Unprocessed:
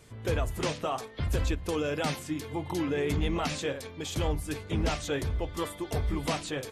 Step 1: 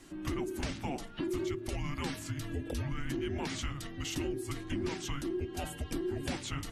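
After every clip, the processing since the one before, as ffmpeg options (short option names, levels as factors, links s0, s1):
-af "afreqshift=-420,bandreject=f=111.1:t=h:w=4,bandreject=f=222.2:t=h:w=4,acompressor=threshold=0.0178:ratio=3,volume=1.12"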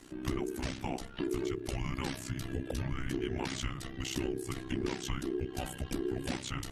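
-af "tremolo=f=64:d=0.857,volume=1.58"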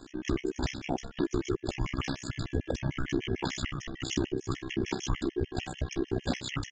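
-af "aresample=16000,aresample=44100,afftfilt=real='re*gt(sin(2*PI*6.7*pts/sr)*(1-2*mod(floor(b*sr/1024/1700),2)),0)':imag='im*gt(sin(2*PI*6.7*pts/sr)*(1-2*mod(floor(b*sr/1024/1700),2)),0)':win_size=1024:overlap=0.75,volume=2.11"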